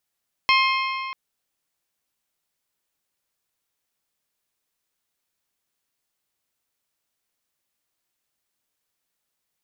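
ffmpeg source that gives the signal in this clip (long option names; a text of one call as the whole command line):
ffmpeg -f lavfi -i "aevalsrc='0.141*pow(10,-3*t/2.62)*sin(2*PI*1060*t)+0.112*pow(10,-3*t/2.128)*sin(2*PI*2120*t)+0.0891*pow(10,-3*t/2.015)*sin(2*PI*2544*t)+0.0708*pow(10,-3*t/1.884)*sin(2*PI*3180*t)+0.0562*pow(10,-3*t/1.729)*sin(2*PI*4240*t)+0.0447*pow(10,-3*t/1.617)*sin(2*PI*5300*t)':duration=0.64:sample_rate=44100" out.wav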